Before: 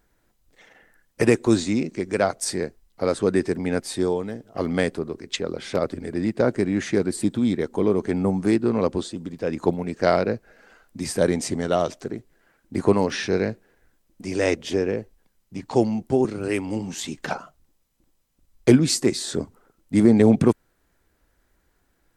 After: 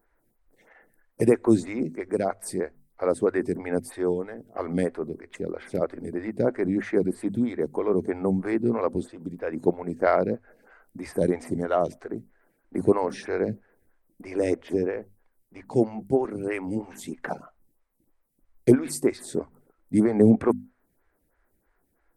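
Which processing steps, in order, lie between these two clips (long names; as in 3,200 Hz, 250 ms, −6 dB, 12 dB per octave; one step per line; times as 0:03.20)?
flat-topped bell 4,500 Hz −10 dB
mains-hum notches 50/100/150/200/250 Hz
phaser with staggered stages 3.1 Hz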